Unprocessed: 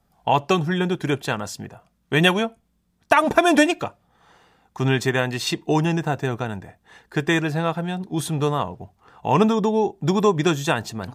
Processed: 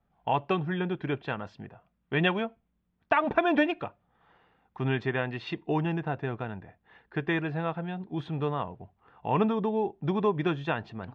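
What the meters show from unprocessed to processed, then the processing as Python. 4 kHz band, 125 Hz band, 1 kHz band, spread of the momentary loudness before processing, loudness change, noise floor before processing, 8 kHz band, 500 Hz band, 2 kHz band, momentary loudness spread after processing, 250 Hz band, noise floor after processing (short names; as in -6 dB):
-13.0 dB, -8.0 dB, -8.0 dB, 12 LU, -8.5 dB, -67 dBFS, under -35 dB, -8.0 dB, -8.0 dB, 11 LU, -8.0 dB, -75 dBFS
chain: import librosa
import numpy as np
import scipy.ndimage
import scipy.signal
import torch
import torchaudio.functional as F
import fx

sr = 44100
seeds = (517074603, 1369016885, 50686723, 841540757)

y = scipy.signal.sosfilt(scipy.signal.butter(4, 3100.0, 'lowpass', fs=sr, output='sos'), x)
y = y * librosa.db_to_amplitude(-8.0)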